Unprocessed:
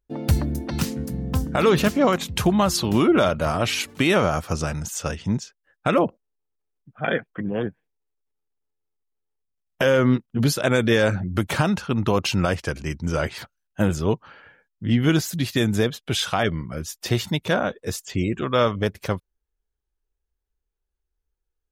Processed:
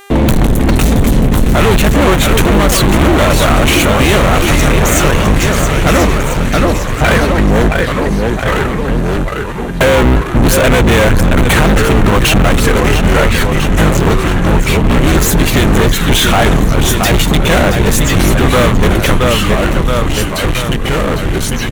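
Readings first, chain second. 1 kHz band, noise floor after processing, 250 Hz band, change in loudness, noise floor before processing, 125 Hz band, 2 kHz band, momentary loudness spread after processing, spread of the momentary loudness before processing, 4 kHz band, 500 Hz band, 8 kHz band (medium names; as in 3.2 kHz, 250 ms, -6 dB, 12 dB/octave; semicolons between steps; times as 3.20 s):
+13.5 dB, -16 dBFS, +11.5 dB, +12.0 dB, -81 dBFS, +14.0 dB, +14.5 dB, 5 LU, 10 LU, +13.5 dB, +11.0 dB, +15.5 dB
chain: octave divider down 2 oct, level +2 dB; gate with hold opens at -37 dBFS; feedback delay 673 ms, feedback 49%, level -12.5 dB; waveshaping leveller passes 5; mains buzz 400 Hz, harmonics 36, -41 dBFS -5 dB/octave; peaking EQ 2.1 kHz +3 dB; waveshaping leveller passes 2; ever faster or slower copies 101 ms, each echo -3 st, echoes 2, each echo -6 dB; compression, threshold -4 dBFS, peak gain reduction 3.5 dB; peaking EQ 5 kHz -9.5 dB 0.38 oct; trim -1.5 dB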